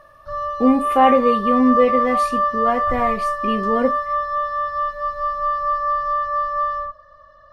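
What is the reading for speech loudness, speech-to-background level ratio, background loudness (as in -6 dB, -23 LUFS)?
-19.5 LUFS, 2.0 dB, -21.5 LUFS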